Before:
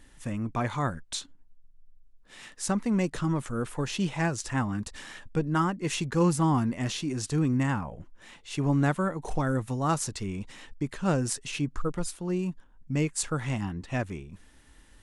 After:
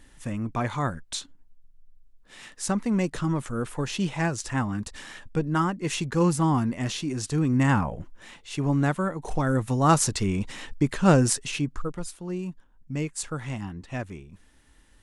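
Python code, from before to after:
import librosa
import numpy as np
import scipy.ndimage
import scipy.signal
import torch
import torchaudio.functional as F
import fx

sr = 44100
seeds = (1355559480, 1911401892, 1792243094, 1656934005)

y = fx.gain(x, sr, db=fx.line((7.46, 1.5), (7.8, 8.5), (8.54, 1.0), (9.27, 1.0), (9.96, 8.0), (11.22, 8.0), (11.95, -2.5)))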